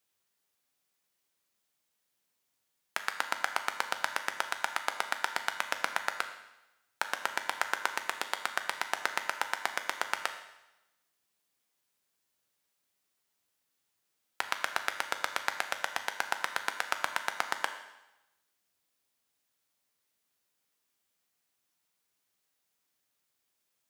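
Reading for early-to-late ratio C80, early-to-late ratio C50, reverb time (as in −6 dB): 11.5 dB, 9.5 dB, 1.0 s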